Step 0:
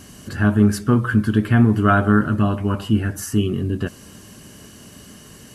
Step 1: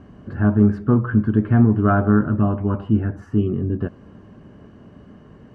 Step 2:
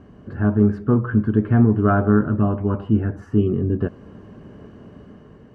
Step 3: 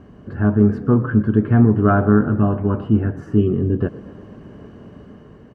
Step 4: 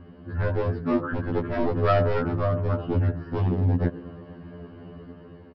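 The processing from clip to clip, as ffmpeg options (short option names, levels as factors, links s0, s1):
-af "lowpass=1100"
-af "equalizer=f=440:t=o:w=0.43:g=4,dynaudnorm=f=380:g=5:m=1.78,volume=0.794"
-filter_complex "[0:a]asplit=6[s0][s1][s2][s3][s4][s5];[s1]adelay=119,afreqshift=32,volume=0.106[s6];[s2]adelay=238,afreqshift=64,volume=0.0653[s7];[s3]adelay=357,afreqshift=96,volume=0.0407[s8];[s4]adelay=476,afreqshift=128,volume=0.0251[s9];[s5]adelay=595,afreqshift=160,volume=0.0157[s10];[s0][s6][s7][s8][s9][s10]amix=inputs=6:normalize=0,volume=1.26"
-af "aresample=11025,volume=4.73,asoftclip=hard,volume=0.211,aresample=44100,afftfilt=real='re*2*eq(mod(b,4),0)':imag='im*2*eq(mod(b,4),0)':win_size=2048:overlap=0.75"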